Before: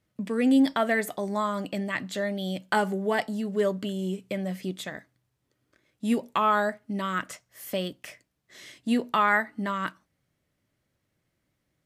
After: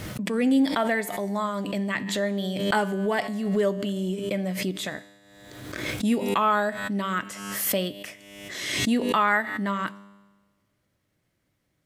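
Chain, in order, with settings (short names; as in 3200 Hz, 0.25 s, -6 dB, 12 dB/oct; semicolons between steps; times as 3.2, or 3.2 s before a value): vocal rider within 4 dB 2 s; resonator 100 Hz, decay 1.3 s, harmonics all, mix 60%; backwards sustainer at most 42 dB/s; gain +6.5 dB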